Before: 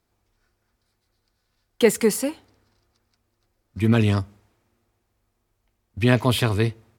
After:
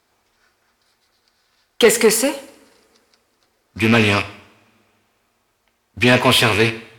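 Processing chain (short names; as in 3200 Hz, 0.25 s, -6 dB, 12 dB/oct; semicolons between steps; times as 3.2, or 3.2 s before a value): rattling part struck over -26 dBFS, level -20 dBFS; two-slope reverb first 0.65 s, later 2.7 s, from -28 dB, DRR 12 dB; overdrive pedal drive 19 dB, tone 6800 Hz, clips at -1 dBFS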